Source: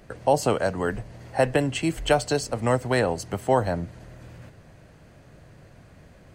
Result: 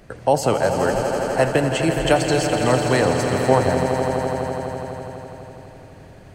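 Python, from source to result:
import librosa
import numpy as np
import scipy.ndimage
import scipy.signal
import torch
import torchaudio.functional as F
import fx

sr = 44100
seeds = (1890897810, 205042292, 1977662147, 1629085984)

y = fx.echo_swell(x, sr, ms=83, loudest=5, wet_db=-10.0)
y = F.gain(torch.from_numpy(y), 3.0).numpy()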